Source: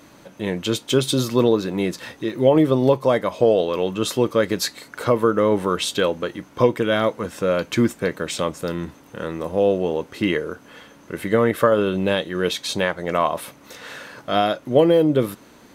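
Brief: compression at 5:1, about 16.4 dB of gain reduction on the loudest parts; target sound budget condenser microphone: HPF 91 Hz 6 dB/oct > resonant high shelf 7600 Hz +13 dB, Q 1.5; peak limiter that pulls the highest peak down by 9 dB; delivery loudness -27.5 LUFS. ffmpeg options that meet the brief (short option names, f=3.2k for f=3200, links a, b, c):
-af "acompressor=threshold=-30dB:ratio=5,alimiter=limit=-24dB:level=0:latency=1,highpass=f=91:p=1,highshelf=f=7.6k:t=q:w=1.5:g=13,volume=7dB"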